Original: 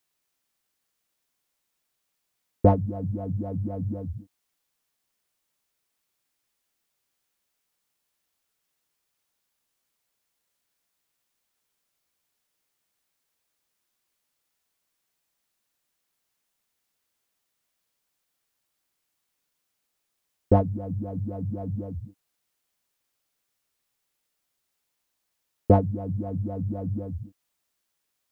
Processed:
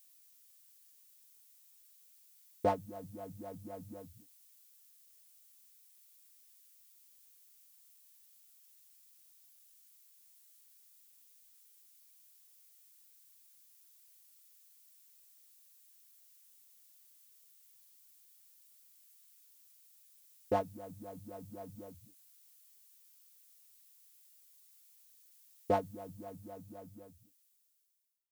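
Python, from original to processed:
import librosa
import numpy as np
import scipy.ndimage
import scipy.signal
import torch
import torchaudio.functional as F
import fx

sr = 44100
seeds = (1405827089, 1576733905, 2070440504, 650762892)

y = fx.fade_out_tail(x, sr, length_s=2.39)
y = np.diff(y, prepend=0.0)
y = y * librosa.db_to_amplitude(12.5)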